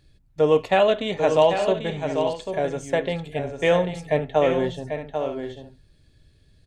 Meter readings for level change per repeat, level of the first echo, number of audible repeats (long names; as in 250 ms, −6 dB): repeats not evenly spaced, −7.5 dB, 2